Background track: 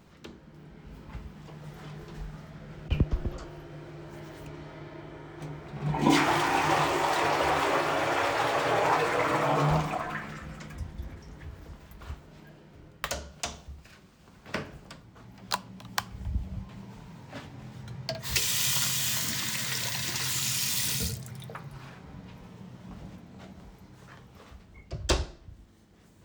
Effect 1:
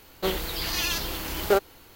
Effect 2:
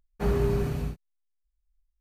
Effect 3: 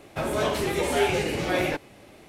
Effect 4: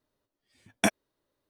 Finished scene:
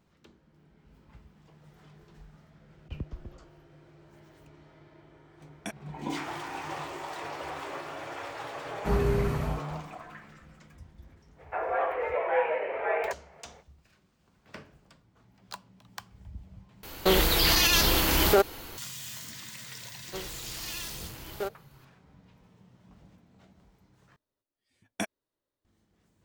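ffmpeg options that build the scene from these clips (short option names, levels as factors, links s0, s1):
-filter_complex "[4:a]asplit=2[s0][s1];[1:a]asplit=2[s2][s3];[0:a]volume=0.251[s4];[3:a]highpass=f=340:t=q:w=0.5412,highpass=f=340:t=q:w=1.307,lowpass=f=2100:t=q:w=0.5176,lowpass=f=2100:t=q:w=0.7071,lowpass=f=2100:t=q:w=1.932,afreqshift=100[s5];[s2]alimiter=level_in=8.91:limit=0.891:release=50:level=0:latency=1[s6];[s4]asplit=3[s7][s8][s9];[s7]atrim=end=16.834[s10];[s6]atrim=end=1.95,asetpts=PTS-STARTPTS,volume=0.299[s11];[s8]atrim=start=18.776:end=24.164[s12];[s1]atrim=end=1.49,asetpts=PTS-STARTPTS,volume=0.376[s13];[s9]atrim=start=25.646[s14];[s0]atrim=end=1.49,asetpts=PTS-STARTPTS,volume=0.2,afade=t=in:d=0.004:c=hsin,afade=t=out:st=1.486:d=0.004:c=hsin,adelay=4820[s15];[2:a]atrim=end=2,asetpts=PTS-STARTPTS,volume=0.891,afade=t=in:d=0.004:c=hsin,afade=t=out:st=1.996:d=0.004:c=hsin,adelay=8650[s16];[s5]atrim=end=2.28,asetpts=PTS-STARTPTS,volume=0.794,afade=t=in:d=0.05,afade=t=out:st=2.23:d=0.05,adelay=11360[s17];[s3]atrim=end=1.95,asetpts=PTS-STARTPTS,volume=0.237,afade=t=in:d=0.004:c=hsin,afade=t=out:st=1.946:d=0.004:c=hsin,adelay=19900[s18];[s10][s11]acrossfade=d=0.004:c1=hsin:c2=hsin[s19];[s19][s12]acrossfade=d=0.004:c1=hsin:c2=hsin[s20];[s20][s13]acrossfade=d=0.004:c1=hsin:c2=hsin[s21];[s21][s14]acrossfade=d=0.004:c1=hsin:c2=hsin[s22];[s22][s15][s16][s17][s18]amix=inputs=5:normalize=0"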